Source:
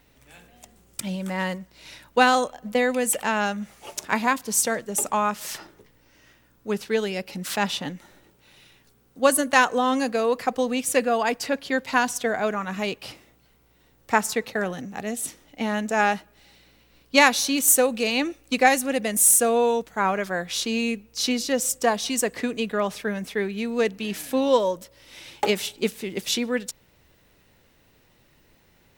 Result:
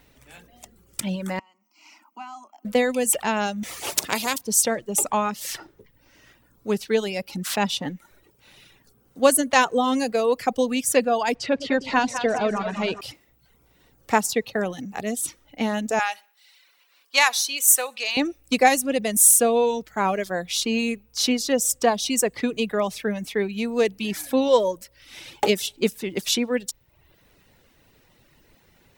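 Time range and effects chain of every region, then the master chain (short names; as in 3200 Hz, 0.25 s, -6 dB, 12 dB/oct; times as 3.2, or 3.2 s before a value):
1.39–2.65 compressor 2.5:1, threshold -40 dBFS + rippled Chebyshev high-pass 210 Hz, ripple 6 dB + fixed phaser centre 2500 Hz, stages 8
3.63–4.38 HPF 230 Hz 6 dB/oct + spectral compressor 2:1
11.35–13.01 G.711 law mismatch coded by mu + LPF 4600 Hz + split-band echo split 620 Hz, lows 0.108 s, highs 0.202 s, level -7.5 dB
15.99–18.17 Chebyshev high-pass 1100 Hz + feedback echo 64 ms, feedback 39%, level -18 dB
whole clip: reverb removal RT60 0.69 s; dynamic EQ 1500 Hz, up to -6 dB, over -38 dBFS, Q 1.3; gain +3 dB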